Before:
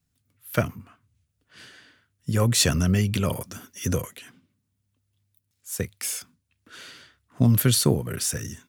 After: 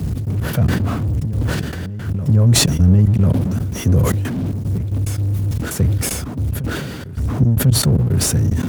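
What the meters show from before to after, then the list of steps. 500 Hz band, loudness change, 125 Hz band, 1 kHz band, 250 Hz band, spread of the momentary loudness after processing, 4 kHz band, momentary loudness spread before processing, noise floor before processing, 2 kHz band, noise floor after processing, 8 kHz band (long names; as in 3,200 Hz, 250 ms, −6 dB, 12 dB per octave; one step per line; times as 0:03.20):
+4.0 dB, +6.5 dB, +12.0 dB, +5.5 dB, +8.5 dB, 11 LU, +5.0 dB, 16 LU, −76 dBFS, +5.5 dB, −27 dBFS, +4.5 dB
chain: converter with a step at zero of −23 dBFS
low-shelf EQ 180 Hz +11.5 dB
in parallel at +2 dB: brickwall limiter −11.5 dBFS, peak gain reduction 10 dB
on the sum: asymmetric clip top −8.5 dBFS
gate pattern "x.x.x.xxx.x" 113 BPM −24 dB
high-pass filter 64 Hz
tilt shelving filter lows +9 dB
on a send: backwards echo 1,045 ms −16 dB
on the sum: level that may fall only so fast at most 32 dB per second
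level −11.5 dB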